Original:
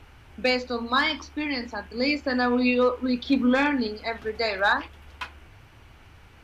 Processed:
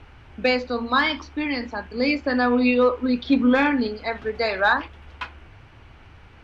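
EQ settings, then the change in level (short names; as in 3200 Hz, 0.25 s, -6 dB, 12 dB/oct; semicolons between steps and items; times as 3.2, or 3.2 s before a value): air absorption 80 m; bell 6700 Hz -2.5 dB 1.4 oct; +3.5 dB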